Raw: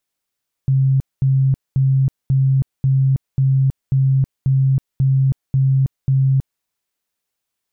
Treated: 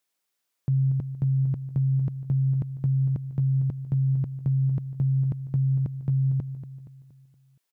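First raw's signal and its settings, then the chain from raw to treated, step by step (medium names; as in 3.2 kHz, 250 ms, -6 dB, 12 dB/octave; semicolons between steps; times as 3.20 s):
tone bursts 134 Hz, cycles 43, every 0.54 s, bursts 11, -11.5 dBFS
high-pass 270 Hz 6 dB/octave; feedback delay 235 ms, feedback 46%, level -11 dB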